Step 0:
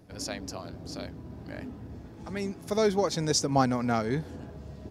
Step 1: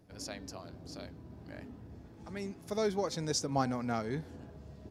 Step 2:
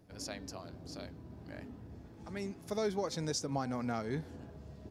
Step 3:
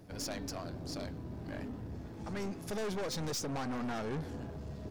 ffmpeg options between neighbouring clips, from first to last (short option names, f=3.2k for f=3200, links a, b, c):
-af "bandreject=f=256.5:t=h:w=4,bandreject=f=513:t=h:w=4,bandreject=f=769.5:t=h:w=4,bandreject=f=1.026k:t=h:w=4,bandreject=f=1.2825k:t=h:w=4,bandreject=f=1.539k:t=h:w=4,bandreject=f=1.7955k:t=h:w=4,bandreject=f=2.052k:t=h:w=4,bandreject=f=2.3085k:t=h:w=4,bandreject=f=2.565k:t=h:w=4,bandreject=f=2.8215k:t=h:w=4,bandreject=f=3.078k:t=h:w=4,bandreject=f=3.3345k:t=h:w=4,bandreject=f=3.591k:t=h:w=4,bandreject=f=3.8475k:t=h:w=4,bandreject=f=4.104k:t=h:w=4,bandreject=f=4.3605k:t=h:w=4,volume=-7dB"
-af "alimiter=limit=-23.5dB:level=0:latency=1:release=202"
-af "aeval=exprs='(tanh(141*val(0)+0.3)-tanh(0.3))/141':c=same,volume=8.5dB"